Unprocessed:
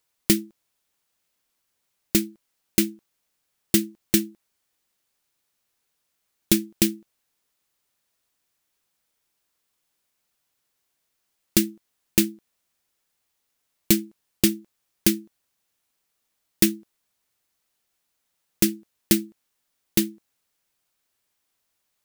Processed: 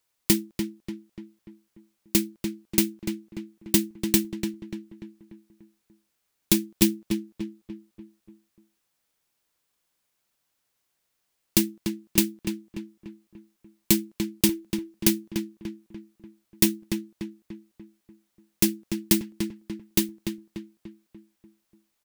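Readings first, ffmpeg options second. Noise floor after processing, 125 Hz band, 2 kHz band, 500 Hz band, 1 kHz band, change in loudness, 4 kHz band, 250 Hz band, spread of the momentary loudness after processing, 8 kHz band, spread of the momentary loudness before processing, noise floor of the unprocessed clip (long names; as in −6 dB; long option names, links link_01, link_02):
−77 dBFS, 0.0 dB, −1.5 dB, −1.0 dB, +2.5 dB, −2.5 dB, −1.0 dB, −0.5 dB, 19 LU, −1.0 dB, 10 LU, −77 dBFS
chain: -filter_complex "[0:a]acrossover=split=330|1600[link_01][link_02][link_03];[link_02]volume=27dB,asoftclip=hard,volume=-27dB[link_04];[link_01][link_04][link_03]amix=inputs=3:normalize=0,asplit=2[link_05][link_06];[link_06]adelay=293,lowpass=frequency=2500:poles=1,volume=-6dB,asplit=2[link_07][link_08];[link_08]adelay=293,lowpass=frequency=2500:poles=1,volume=0.5,asplit=2[link_09][link_10];[link_10]adelay=293,lowpass=frequency=2500:poles=1,volume=0.5,asplit=2[link_11][link_12];[link_12]adelay=293,lowpass=frequency=2500:poles=1,volume=0.5,asplit=2[link_13][link_14];[link_14]adelay=293,lowpass=frequency=2500:poles=1,volume=0.5,asplit=2[link_15][link_16];[link_16]adelay=293,lowpass=frequency=2500:poles=1,volume=0.5[link_17];[link_05][link_07][link_09][link_11][link_13][link_15][link_17]amix=inputs=7:normalize=0,volume=-1dB"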